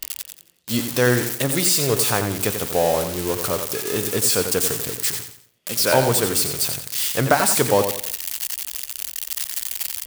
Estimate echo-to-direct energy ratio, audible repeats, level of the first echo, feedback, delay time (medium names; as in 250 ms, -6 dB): -7.5 dB, 3, -8.0 dB, 35%, 89 ms